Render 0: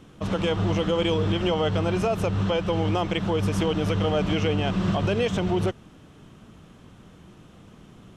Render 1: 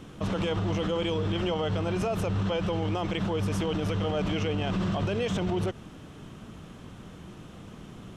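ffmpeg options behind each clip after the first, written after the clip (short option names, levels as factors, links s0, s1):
-af "alimiter=level_in=1.12:limit=0.0631:level=0:latency=1:release=61,volume=0.891,volume=1.58"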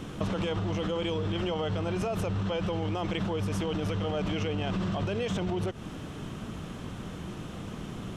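-af "acompressor=threshold=0.0224:ratio=10,volume=2"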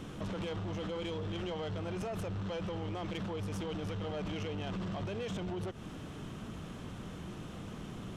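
-af "asoftclip=type=tanh:threshold=0.0376,volume=0.596"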